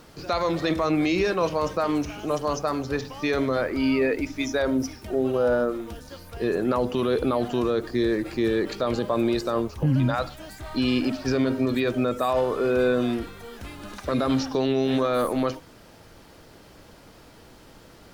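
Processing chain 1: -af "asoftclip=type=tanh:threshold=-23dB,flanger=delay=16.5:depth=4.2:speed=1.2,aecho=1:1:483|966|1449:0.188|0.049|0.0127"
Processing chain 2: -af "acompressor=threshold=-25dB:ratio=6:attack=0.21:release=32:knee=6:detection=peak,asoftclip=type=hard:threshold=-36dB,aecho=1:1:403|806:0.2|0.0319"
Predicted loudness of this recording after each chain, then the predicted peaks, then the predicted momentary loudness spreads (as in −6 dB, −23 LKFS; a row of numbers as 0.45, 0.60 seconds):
−32.0, −38.0 LKFS; −22.0, −34.0 dBFS; 9, 12 LU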